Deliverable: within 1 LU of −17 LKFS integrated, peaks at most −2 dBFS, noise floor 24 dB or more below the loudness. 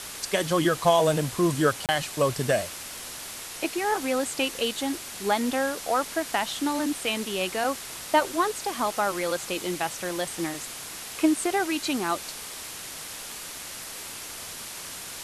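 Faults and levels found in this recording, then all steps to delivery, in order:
number of dropouts 1; longest dropout 28 ms; background noise floor −39 dBFS; target noise floor −52 dBFS; integrated loudness −27.5 LKFS; sample peak −8.0 dBFS; target loudness −17.0 LKFS
→ repair the gap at 0:01.86, 28 ms
noise reduction from a noise print 13 dB
level +10.5 dB
brickwall limiter −2 dBFS

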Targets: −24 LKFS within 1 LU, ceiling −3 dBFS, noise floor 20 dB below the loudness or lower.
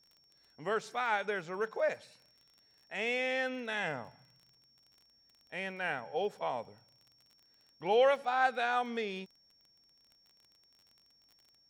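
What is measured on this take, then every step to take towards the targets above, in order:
crackle rate 29 per second; interfering tone 5,500 Hz; level of the tone −65 dBFS; integrated loudness −34.0 LKFS; sample peak −16.0 dBFS; target loudness −24.0 LKFS
→ click removal
notch filter 5,500 Hz, Q 30
level +10 dB

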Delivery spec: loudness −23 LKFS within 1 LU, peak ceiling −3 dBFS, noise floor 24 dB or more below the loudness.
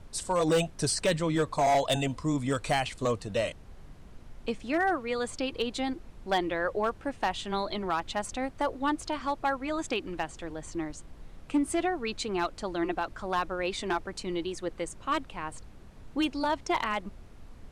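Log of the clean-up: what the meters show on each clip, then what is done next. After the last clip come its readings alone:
share of clipped samples 0.8%; peaks flattened at −20.0 dBFS; background noise floor −49 dBFS; target noise floor −55 dBFS; integrated loudness −31.0 LKFS; sample peak −20.0 dBFS; target loudness −23.0 LKFS
→ clipped peaks rebuilt −20 dBFS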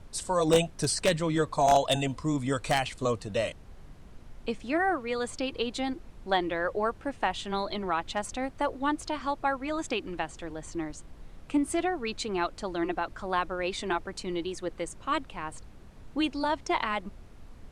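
share of clipped samples 0.0%; background noise floor −49 dBFS; target noise floor −54 dBFS
→ noise reduction from a noise print 6 dB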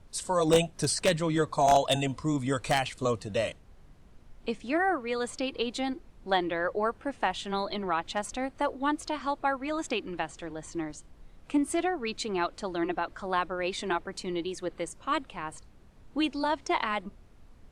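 background noise floor −55 dBFS; integrated loudness −30.0 LKFS; sample peak −11.0 dBFS; target loudness −23.0 LKFS
→ level +7 dB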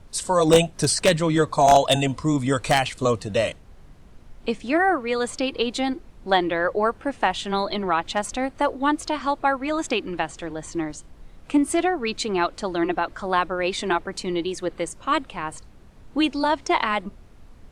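integrated loudness −23.0 LKFS; sample peak −4.0 dBFS; background noise floor −48 dBFS

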